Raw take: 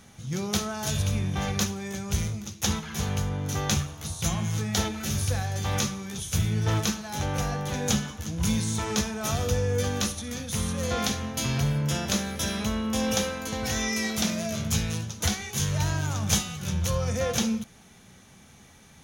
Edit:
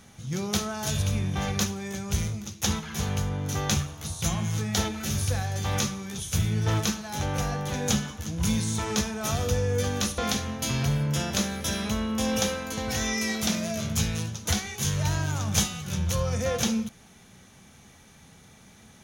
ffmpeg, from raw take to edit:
-filter_complex "[0:a]asplit=2[a][b];[a]atrim=end=10.182[c];[b]atrim=start=10.928[d];[c][d]acrossfade=d=0.004:c1=hsin:c2=hsin"

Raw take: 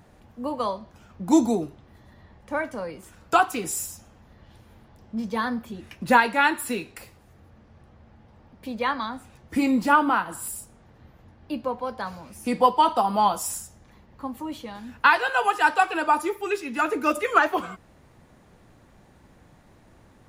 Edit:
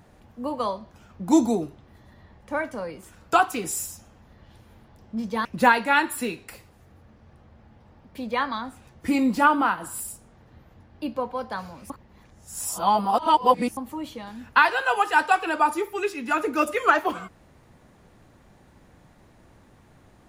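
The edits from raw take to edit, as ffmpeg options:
-filter_complex "[0:a]asplit=4[a][b][c][d];[a]atrim=end=5.452[e];[b]atrim=start=5.928:end=12.382[f];[c]atrim=start=12.378:end=14.252,asetpts=PTS-STARTPTS,areverse[g];[d]atrim=start=14.248[h];[e][f]acrossfade=d=0.004:c1=hsin:c2=hsin[i];[i][g]acrossfade=d=0.004:c1=hsin:c2=hsin[j];[j][h]acrossfade=d=0.004:c1=hsin:c2=hsin"

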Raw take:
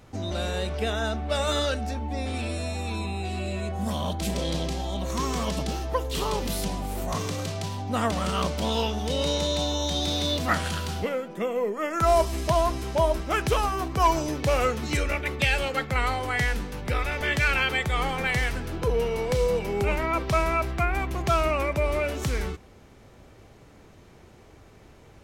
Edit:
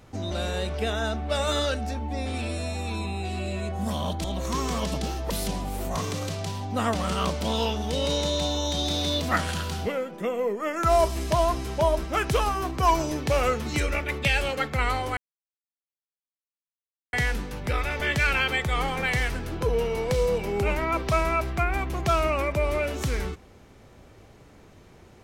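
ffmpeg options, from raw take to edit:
-filter_complex "[0:a]asplit=4[a][b][c][d];[a]atrim=end=4.242[e];[b]atrim=start=4.888:end=5.952[f];[c]atrim=start=6.468:end=16.34,asetpts=PTS-STARTPTS,afade=t=out:st=9.868:d=0.004:c=hsin,apad=pad_dur=1.96[g];[d]atrim=start=16.34,asetpts=PTS-STARTPTS,afade=t=in:d=0.004:c=hsin[h];[e][f]acrossfade=d=0.004:c1=hsin:c2=hsin[i];[g][h]concat=n=2:v=0:a=1[j];[i][j]acrossfade=d=0.004:c1=hsin:c2=hsin"

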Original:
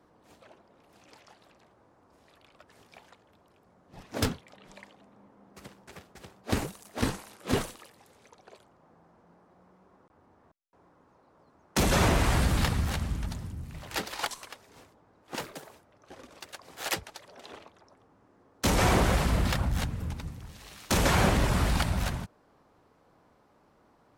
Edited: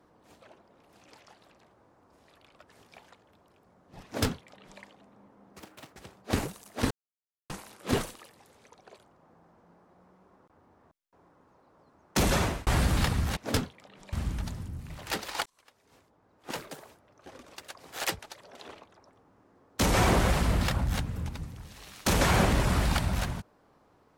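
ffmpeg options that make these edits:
-filter_complex "[0:a]asplit=8[a][b][c][d][e][f][g][h];[a]atrim=end=5.604[i];[b]atrim=start=5.6:end=6.12,asetpts=PTS-STARTPTS,asetrate=70119,aresample=44100[j];[c]atrim=start=6.116:end=7.1,asetpts=PTS-STARTPTS,afade=t=out:st=0.98:d=0.004:c=hsin,apad=pad_dur=0.59[k];[d]atrim=start=7.1:end=12.27,asetpts=PTS-STARTPTS,afade=t=in:d=0.004:c=hsin,afade=t=out:st=4.78:d=0.39[l];[e]atrim=start=12.27:end=12.972,asetpts=PTS-STARTPTS,afade=t=in:d=0.004:c=hsin[m];[f]atrim=start=4.048:end=4.812[n];[g]atrim=start=12.968:end=14.3,asetpts=PTS-STARTPTS,afade=t=out:st=1.328:d=0.004:c=hsin[o];[h]atrim=start=14.3,asetpts=PTS-STARTPTS,afade=t=in:d=1.18[p];[i][j]acrossfade=d=0.004:c1=hsin:c2=hsin[q];[k][l][m]concat=n=3:v=0:a=1[r];[q][r]acrossfade=d=0.004:c1=hsin:c2=hsin[s];[s][n]acrossfade=d=0.004:c1=hsin:c2=hsin[t];[o][p]concat=n=2:v=0:a=1[u];[t][u]acrossfade=d=0.004:c1=hsin:c2=hsin"

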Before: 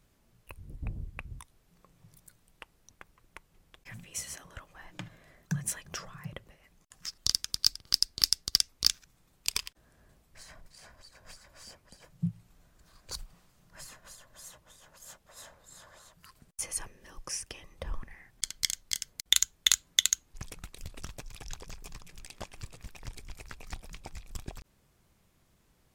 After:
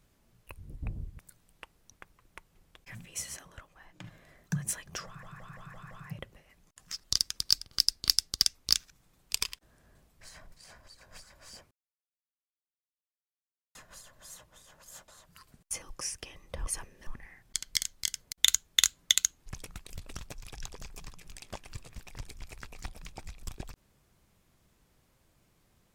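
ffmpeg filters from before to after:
-filter_complex "[0:a]asplit=14[a][b][c][d][e][f][g][h][i][j][k][l][m][n];[a]atrim=end=1.192[o];[b]atrim=start=2.178:end=5.03,asetpts=PTS-STARTPTS,afade=t=out:st=2.152:d=0.7:c=qua:silence=0.473151[p];[c]atrim=start=5.03:end=6.222,asetpts=PTS-STARTPTS,afade=t=in:d=0.004:c=hsin:silence=0.473151[q];[d]atrim=start=6.048:end=6.222[r];[e]atrim=start=6.048:end=6.222[s];[f]atrim=start=6.048:end=6.222[t];[g]atrim=start=6.048:end=6.222[u];[h]atrim=start=6.048:end=11.85,asetpts=PTS-STARTPTS,afade=t=out:st=5.798:d=0.004:c=hsin[v];[i]atrim=start=11.85:end=13.89,asetpts=PTS-STARTPTS,volume=0[w];[j]atrim=start=13.89:end=15.222,asetpts=PTS-STARTPTS,afade=t=in:d=0.004:c=hsin[x];[k]atrim=start=15.958:end=16.702[y];[l]atrim=start=17.098:end=17.952[z];[m]atrim=start=16.698:end=17.102[aa];[n]atrim=start=17.948[ab];[p][q]concat=n=2:v=0:a=1[ac];[o][ac]acrossfade=d=0.004:c1=hsin:c2=hsin[ad];[ad][r]acrossfade=d=0.004:c1=hsin:c2=hsin[ae];[ae][s]acrossfade=d=0.004:c1=hsin:c2=hsin[af];[af][t]acrossfade=d=0.004:c1=hsin:c2=hsin[ag];[ag][u]acrossfade=d=0.004:c1=hsin:c2=hsin[ah];[v][w][x]concat=n=3:v=0:a=1[ai];[ah][ai]acrossfade=d=0.004:c1=hsin:c2=hsin[aj];[aj][y]acrossfade=d=0.004:c1=hsin:c2=hsin[ak];[ak][z]acrossfade=d=0.004:c1=hsin:c2=hsin[al];[al][aa]acrossfade=d=0.004:c1=hsin:c2=hsin[am];[am][ab]acrossfade=d=0.004:c1=hsin:c2=hsin"

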